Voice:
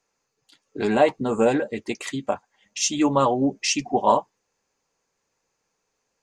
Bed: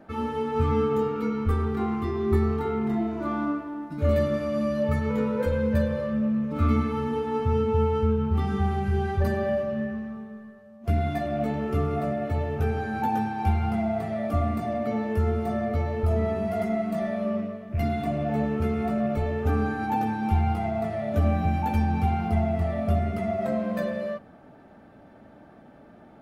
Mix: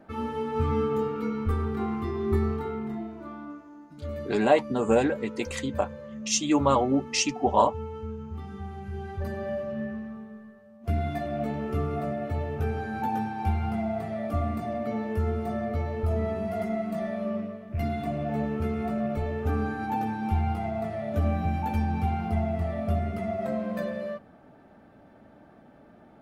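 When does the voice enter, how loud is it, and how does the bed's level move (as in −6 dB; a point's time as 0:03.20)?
3.50 s, −2.5 dB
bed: 0:02.47 −2.5 dB
0:03.42 −13 dB
0:08.69 −13 dB
0:09.87 −3 dB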